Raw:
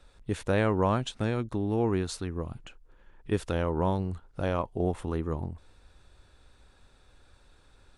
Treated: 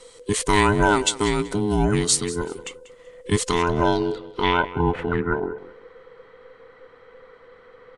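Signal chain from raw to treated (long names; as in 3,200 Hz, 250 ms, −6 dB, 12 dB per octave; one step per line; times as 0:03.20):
frequency inversion band by band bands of 500 Hz
high-shelf EQ 2,300 Hz +10 dB
on a send: repeating echo 190 ms, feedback 24%, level −17 dB
on the sum: low-pass filter sweep 8,600 Hz → 1,600 Hz, 0:03.33–0:05.32
level +6.5 dB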